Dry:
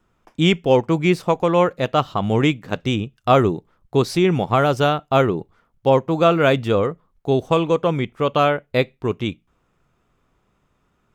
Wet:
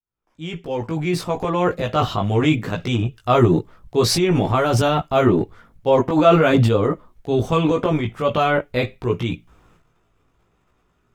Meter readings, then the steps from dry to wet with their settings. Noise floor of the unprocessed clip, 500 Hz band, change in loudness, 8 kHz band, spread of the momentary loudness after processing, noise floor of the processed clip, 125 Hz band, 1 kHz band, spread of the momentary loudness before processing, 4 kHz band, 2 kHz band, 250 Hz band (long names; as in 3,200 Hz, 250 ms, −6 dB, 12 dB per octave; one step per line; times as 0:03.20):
−67 dBFS, −1.0 dB, 0.0 dB, can't be measured, 11 LU, −65 dBFS, +2.0 dB, −1.0 dB, 8 LU, 0.0 dB, −1.0 dB, +1.0 dB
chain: fade in at the beginning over 1.99 s
transient designer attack −1 dB, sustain +12 dB
multi-voice chorus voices 4, 0.59 Hz, delay 18 ms, depth 1.7 ms
level +2 dB